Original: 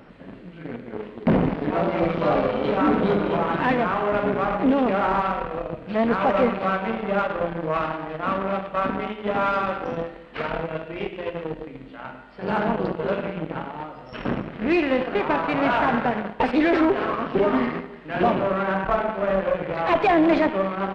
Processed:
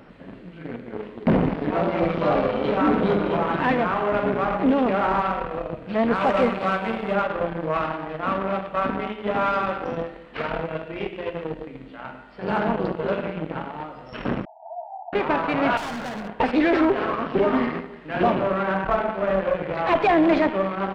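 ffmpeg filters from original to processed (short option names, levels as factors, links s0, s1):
-filter_complex "[0:a]asettb=1/sr,asplit=3[s0][s1][s2];[s0]atrim=end=6.154[s3];[s1]atrim=start=6.15:end=7.14,asetpts=PTS-STARTPTS,afade=t=in:d=0.004:c=qsin,afade=t=out:st=0.986:d=0.004:c=qsin,aemphasis=mode=production:type=50fm[s4];[s2]atrim=start=7.136[s5];[s3][s4]acrossfade=d=0.004:c1=hsin:c2=qsin[s6];[s6][s5]acrossfade=d=0.004:c1=qsin:c2=hsin,asettb=1/sr,asplit=3[s7][s8][s9];[s7]atrim=end=14.454[s10];[s8]atrim=start=14.45:end=15.13,asetpts=PTS-STARTPTS,afade=t=in:d=0.004:c=qsin,afade=t=out:st=0.676:d=0.004:c=qsin,asuperpass=centerf=770:order=20:qfactor=2.4[s11];[s9]atrim=start=15.126[s12];[s10][s11]acrossfade=d=0.004:c1=hsin:c2=qsin[s13];[s13][s12]acrossfade=d=0.004:c1=qsin:c2=hsin,asettb=1/sr,asplit=3[s14][s15][s16];[s14]atrim=end=15.774[s17];[s15]atrim=start=15.77:end=16.28,asetpts=PTS-STARTPTS,afade=t=in:d=0.004:c=qsin,afade=t=out:st=0.506:d=0.004:c=qsin,volume=28.2,asoftclip=hard,volume=0.0355[s18];[s16]atrim=start=16.276[s19];[s17][s18]acrossfade=d=0.004:c1=hsin:c2=qsin[s20];[s20][s19]acrossfade=d=0.004:c1=qsin:c2=hsin"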